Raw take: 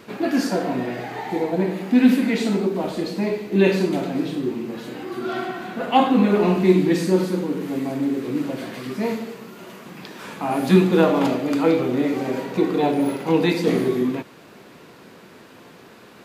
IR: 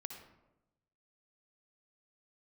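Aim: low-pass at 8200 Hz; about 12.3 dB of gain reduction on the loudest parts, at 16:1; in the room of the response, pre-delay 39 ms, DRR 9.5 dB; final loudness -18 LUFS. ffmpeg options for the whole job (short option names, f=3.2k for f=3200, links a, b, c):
-filter_complex "[0:a]lowpass=8.2k,acompressor=threshold=-21dB:ratio=16,asplit=2[a][b];[1:a]atrim=start_sample=2205,adelay=39[c];[b][c]afir=irnorm=-1:irlink=0,volume=-6.5dB[d];[a][d]amix=inputs=2:normalize=0,volume=8dB"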